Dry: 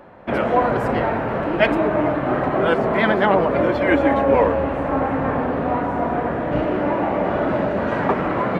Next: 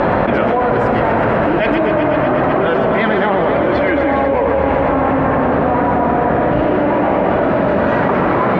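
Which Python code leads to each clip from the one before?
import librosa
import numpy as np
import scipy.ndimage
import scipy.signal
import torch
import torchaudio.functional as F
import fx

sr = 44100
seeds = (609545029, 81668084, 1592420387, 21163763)

y = fx.air_absorb(x, sr, metres=100.0)
y = fx.echo_thinned(y, sr, ms=124, feedback_pct=83, hz=340.0, wet_db=-9.0)
y = fx.env_flatten(y, sr, amount_pct=100)
y = y * librosa.db_to_amplitude(-2.0)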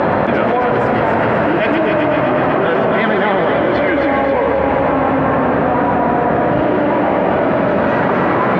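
y = scipy.signal.sosfilt(scipy.signal.butter(2, 85.0, 'highpass', fs=sr, output='sos'), x)
y = fx.echo_wet_highpass(y, sr, ms=268, feedback_pct=51, hz=1500.0, wet_db=-4.0)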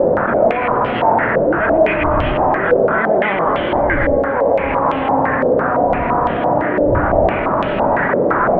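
y = fx.dmg_wind(x, sr, seeds[0], corner_hz=99.0, level_db=-24.0)
y = fx.doubler(y, sr, ms=30.0, db=-12)
y = fx.filter_held_lowpass(y, sr, hz=5.9, low_hz=520.0, high_hz=3100.0)
y = y * librosa.db_to_amplitude(-5.5)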